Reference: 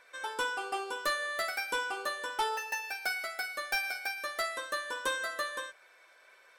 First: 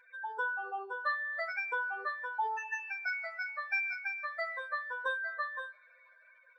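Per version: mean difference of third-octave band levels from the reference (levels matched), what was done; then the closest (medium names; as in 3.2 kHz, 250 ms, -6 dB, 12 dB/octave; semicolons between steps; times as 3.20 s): 14.0 dB: spectral contrast enhancement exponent 3; comb of notches 190 Hz; two-slope reverb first 0.28 s, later 4.6 s, from -22 dB, DRR 17 dB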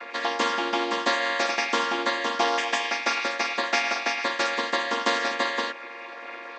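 10.5 dB: vocoder on a held chord minor triad, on A#3; band-pass 140–4400 Hz; spectrum-flattening compressor 2:1; trim +7 dB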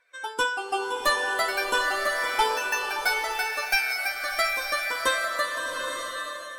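6.5 dB: expander on every frequency bin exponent 1.5; bass shelf 61 Hz +6.5 dB; swelling reverb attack 890 ms, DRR 2 dB; trim +9 dB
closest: third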